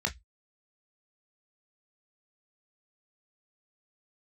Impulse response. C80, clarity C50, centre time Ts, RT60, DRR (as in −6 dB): 34.0 dB, 21.0 dB, 9 ms, 0.10 s, 3.0 dB